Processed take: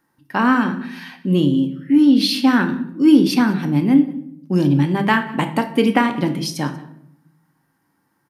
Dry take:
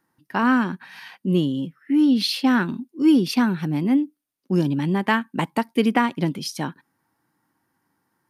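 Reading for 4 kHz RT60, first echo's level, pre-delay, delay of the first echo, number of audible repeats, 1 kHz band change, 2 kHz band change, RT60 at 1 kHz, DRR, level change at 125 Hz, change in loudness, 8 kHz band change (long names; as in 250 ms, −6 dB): 0.50 s, −23.0 dB, 3 ms, 188 ms, 1, +3.5 dB, +4.0 dB, 0.65 s, 6.0 dB, +5.0 dB, +4.5 dB, can't be measured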